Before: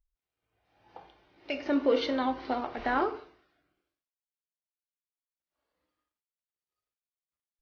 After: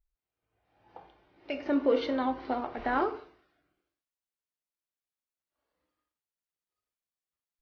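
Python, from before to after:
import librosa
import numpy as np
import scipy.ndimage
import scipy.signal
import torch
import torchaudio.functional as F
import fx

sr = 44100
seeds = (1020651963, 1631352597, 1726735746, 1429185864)

y = fx.high_shelf(x, sr, hz=3000.0, db=fx.steps((0.0, -9.0), (2.92, -3.5)))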